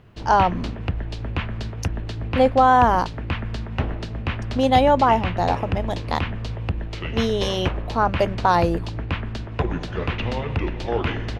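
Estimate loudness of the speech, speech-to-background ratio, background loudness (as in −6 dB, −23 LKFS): −20.5 LKFS, 8.0 dB, −28.5 LKFS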